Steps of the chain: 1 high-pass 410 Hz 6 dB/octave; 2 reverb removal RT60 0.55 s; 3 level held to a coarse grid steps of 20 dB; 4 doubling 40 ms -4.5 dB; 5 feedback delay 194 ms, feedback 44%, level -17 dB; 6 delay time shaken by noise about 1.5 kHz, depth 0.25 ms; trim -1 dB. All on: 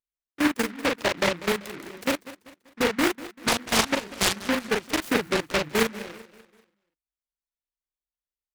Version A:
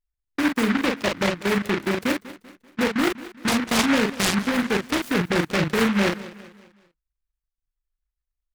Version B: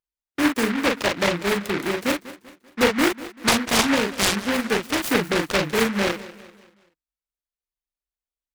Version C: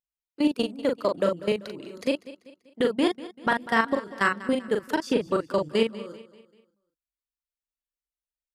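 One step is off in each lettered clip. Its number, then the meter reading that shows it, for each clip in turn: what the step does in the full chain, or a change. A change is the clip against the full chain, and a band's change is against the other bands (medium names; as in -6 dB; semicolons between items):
1, 125 Hz band +7.0 dB; 3, crest factor change -2.0 dB; 6, 8 kHz band -15.5 dB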